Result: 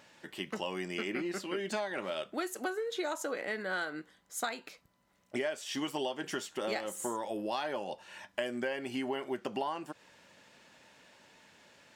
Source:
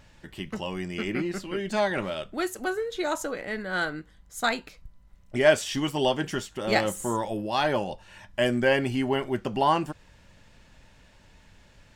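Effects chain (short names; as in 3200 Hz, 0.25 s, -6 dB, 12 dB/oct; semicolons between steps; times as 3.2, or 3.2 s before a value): HPF 280 Hz 12 dB/oct; compressor 20:1, threshold -31 dBFS, peak gain reduction 18.5 dB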